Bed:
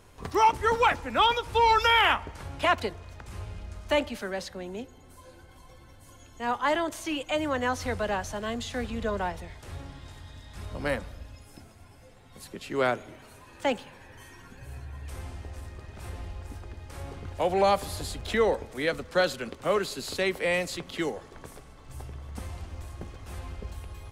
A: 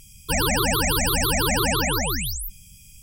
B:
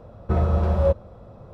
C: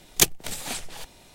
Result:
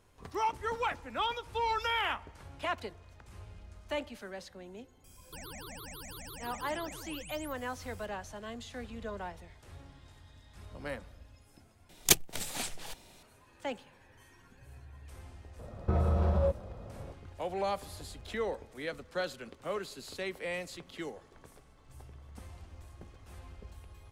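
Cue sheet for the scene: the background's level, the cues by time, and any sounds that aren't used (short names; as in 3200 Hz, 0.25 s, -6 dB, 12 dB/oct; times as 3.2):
bed -10.5 dB
5.04 add A -10.5 dB + compressor 3:1, threshold -37 dBFS
11.89 replace with C -4.5 dB
15.59 add B -2.5 dB + compressor, threshold -21 dBFS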